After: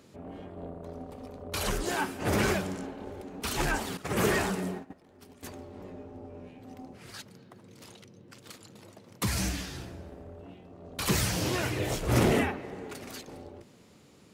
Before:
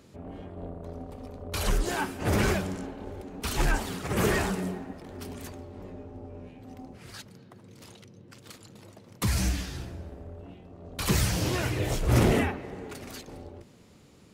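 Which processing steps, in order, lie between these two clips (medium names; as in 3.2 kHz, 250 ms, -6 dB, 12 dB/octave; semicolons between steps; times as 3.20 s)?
3.97–5.43 s: gate -36 dBFS, range -14 dB; bass shelf 80 Hz -11.5 dB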